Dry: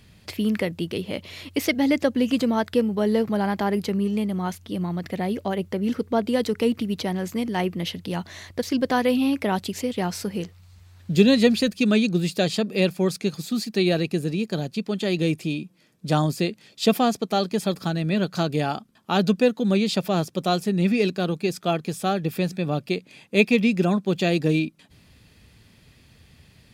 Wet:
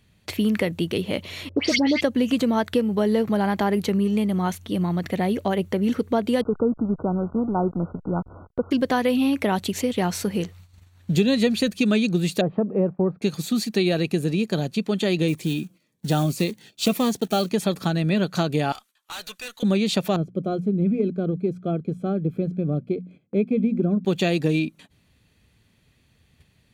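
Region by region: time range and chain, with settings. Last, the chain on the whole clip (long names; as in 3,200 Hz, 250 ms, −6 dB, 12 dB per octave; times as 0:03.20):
0:01.49–0:02.01: all-pass dispersion highs, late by 95 ms, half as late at 2,100 Hz + envelope-controlled low-pass 450–5,000 Hz up, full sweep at −26.5 dBFS
0:06.41–0:08.71: slack as between gear wheels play −31.5 dBFS + linear-phase brick-wall low-pass 1,500 Hz
0:12.41–0:13.22: noise gate −40 dBFS, range −14 dB + low-pass filter 1,100 Hz 24 dB per octave + one half of a high-frequency compander encoder only
0:15.28–0:17.51: one scale factor per block 5 bits + phaser whose notches keep moving one way falling 1.8 Hz
0:18.72–0:19.63: high-pass filter 1,300 Hz + high-shelf EQ 2,900 Hz +6 dB + tube saturation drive 36 dB, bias 0.3
0:20.16–0:24.05: moving average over 48 samples + mains-hum notches 60/120/180/240 Hz
whole clip: notch filter 5,000 Hz, Q 7.5; noise gate −48 dBFS, range −12 dB; downward compressor 3 to 1, threshold −22 dBFS; level +4 dB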